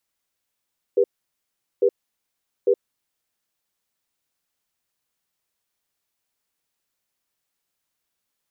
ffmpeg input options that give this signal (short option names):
-f lavfi -i "aevalsrc='0.15*(sin(2*PI*400*t)+sin(2*PI*487*t))*clip(min(mod(t,0.85),0.07-mod(t,0.85))/0.005,0,1)':d=2.01:s=44100"